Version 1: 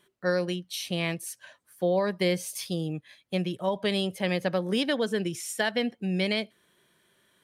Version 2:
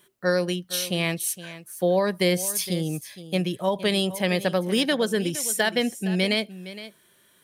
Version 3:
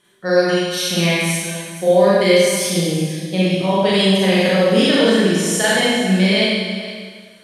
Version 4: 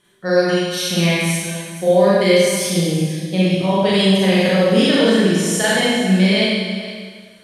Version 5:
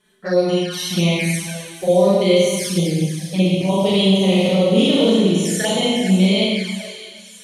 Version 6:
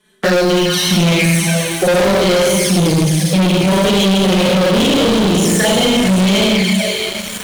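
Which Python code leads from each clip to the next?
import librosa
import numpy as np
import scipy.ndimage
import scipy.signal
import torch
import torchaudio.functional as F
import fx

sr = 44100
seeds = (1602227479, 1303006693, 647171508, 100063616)

y1 = fx.high_shelf(x, sr, hz=8000.0, db=12.0)
y1 = y1 + 10.0 ** (-15.0 / 20.0) * np.pad(y1, (int(464 * sr / 1000.0), 0))[:len(y1)]
y1 = y1 * librosa.db_to_amplitude(3.5)
y2 = scipy.signal.sosfilt(scipy.signal.butter(2, 8100.0, 'lowpass', fs=sr, output='sos'), y1)
y2 = fx.rev_schroeder(y2, sr, rt60_s=1.5, comb_ms=32, drr_db=-8.5)
y3 = fx.low_shelf(y2, sr, hz=120.0, db=8.0)
y3 = y3 * librosa.db_to_amplitude(-1.0)
y4 = fx.env_flanger(y3, sr, rest_ms=4.7, full_db=-13.0)
y4 = fx.echo_wet_highpass(y4, sr, ms=604, feedback_pct=74, hz=4500.0, wet_db=-12.0)
y5 = fx.leveller(y4, sr, passes=5)
y5 = fx.band_squash(y5, sr, depth_pct=70)
y5 = y5 * librosa.db_to_amplitude(-7.0)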